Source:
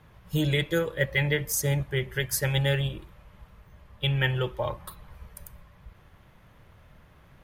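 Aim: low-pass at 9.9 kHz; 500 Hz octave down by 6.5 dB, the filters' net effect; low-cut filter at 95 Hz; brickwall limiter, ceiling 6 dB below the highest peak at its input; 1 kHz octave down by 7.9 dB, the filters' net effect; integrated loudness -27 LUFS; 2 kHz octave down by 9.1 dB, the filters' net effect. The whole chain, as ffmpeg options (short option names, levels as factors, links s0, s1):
-af "highpass=95,lowpass=9900,equalizer=f=500:t=o:g=-6,equalizer=f=1000:t=o:g=-6,equalizer=f=2000:t=o:g=-8.5,volume=1.88,alimiter=limit=0.15:level=0:latency=1"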